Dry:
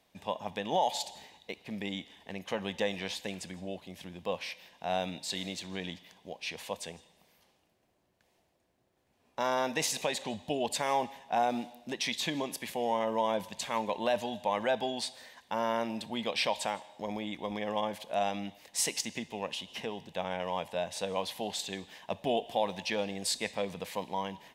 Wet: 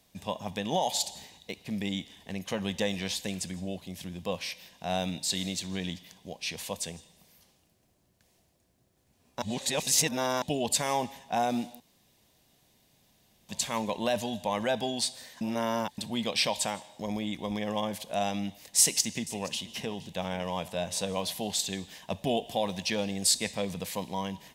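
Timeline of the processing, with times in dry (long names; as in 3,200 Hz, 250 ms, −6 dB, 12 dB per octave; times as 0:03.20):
0:09.42–0:10.42: reverse
0:11.80–0:13.49: fill with room tone
0:15.41–0:15.98: reverse
0:18.79–0:21.35: single-tap delay 475 ms −19 dB
whole clip: bass and treble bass +9 dB, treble +10 dB; notch filter 870 Hz, Q 22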